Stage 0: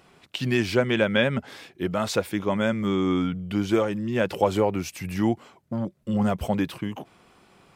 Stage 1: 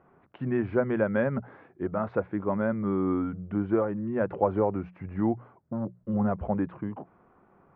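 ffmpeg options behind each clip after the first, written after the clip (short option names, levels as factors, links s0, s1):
-af "lowpass=f=1500:w=0.5412,lowpass=f=1500:w=1.3066,bandreject=f=60:t=h:w=6,bandreject=f=120:t=h:w=6,bandreject=f=180:t=h:w=6,volume=0.708"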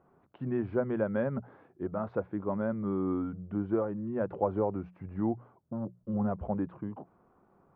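-af "equalizer=f=2100:w=1.3:g=-7,volume=0.631"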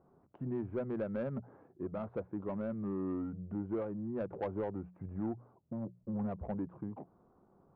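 -filter_complex "[0:a]asplit=2[s0][s1];[s1]acompressor=threshold=0.0112:ratio=6,volume=1.26[s2];[s0][s2]amix=inputs=2:normalize=0,asoftclip=type=tanh:threshold=0.0944,adynamicsmooth=sensitivity=1:basefreq=1200,volume=0.447"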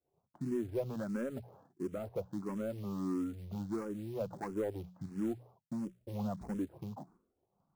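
-filter_complex "[0:a]acrusher=bits=6:mode=log:mix=0:aa=0.000001,agate=range=0.0224:threshold=0.00158:ratio=3:detection=peak,asplit=2[s0][s1];[s1]afreqshift=1.5[s2];[s0][s2]amix=inputs=2:normalize=1,volume=1.41"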